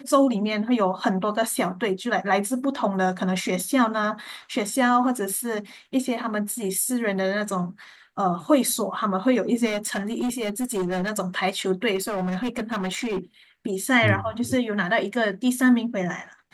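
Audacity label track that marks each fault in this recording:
9.650000	11.110000	clipped -22 dBFS
11.950000	13.190000	clipped -23 dBFS

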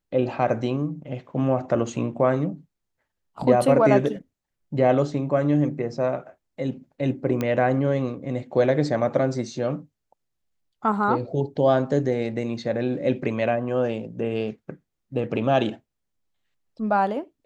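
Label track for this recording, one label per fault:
7.410000	7.410000	pop -13 dBFS

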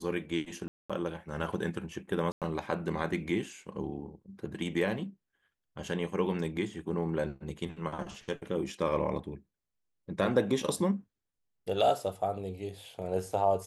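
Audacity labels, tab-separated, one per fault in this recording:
0.680000	0.900000	dropout 216 ms
2.320000	2.420000	dropout 97 ms

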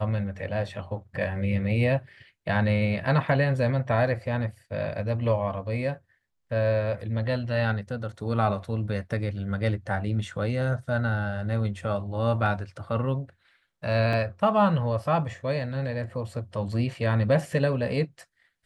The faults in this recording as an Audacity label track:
14.130000	14.130000	dropout 3.2 ms

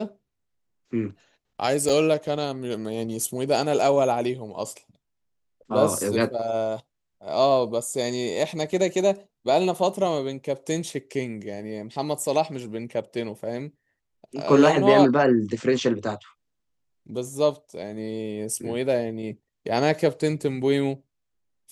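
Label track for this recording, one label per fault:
1.890000	1.890000	dropout 3.8 ms

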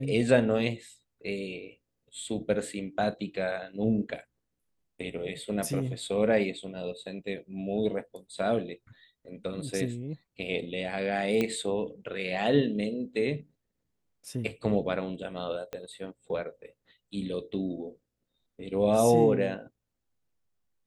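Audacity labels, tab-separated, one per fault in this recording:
11.410000	11.410000	pop -15 dBFS
15.730000	15.730000	pop -22 dBFS

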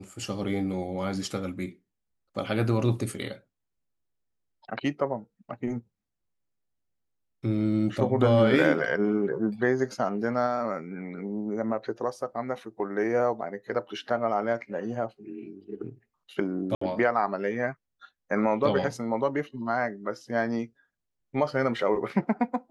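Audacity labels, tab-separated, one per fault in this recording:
16.750000	16.810000	dropout 64 ms

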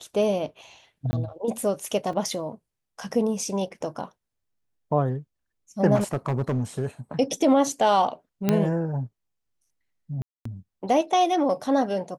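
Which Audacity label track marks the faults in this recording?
1.110000	1.130000	dropout 20 ms
2.130000	2.130000	dropout 3.6 ms
5.950000	6.860000	clipped -20.5 dBFS
8.490000	8.490000	pop -8 dBFS
10.220000	10.450000	dropout 234 ms

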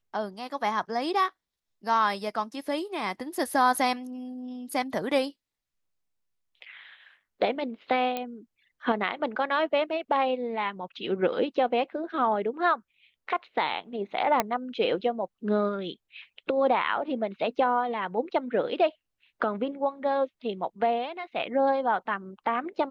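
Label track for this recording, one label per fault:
8.170000	8.170000	pop -17 dBFS
14.400000	14.400000	pop -8 dBFS

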